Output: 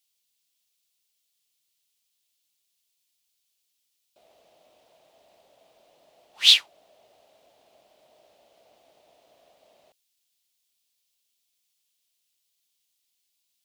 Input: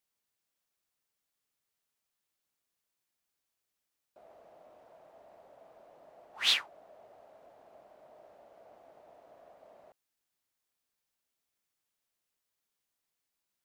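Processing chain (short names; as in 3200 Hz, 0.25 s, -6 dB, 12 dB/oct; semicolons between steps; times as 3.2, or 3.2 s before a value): resonant high shelf 2200 Hz +12.5 dB, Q 1.5; gain -3 dB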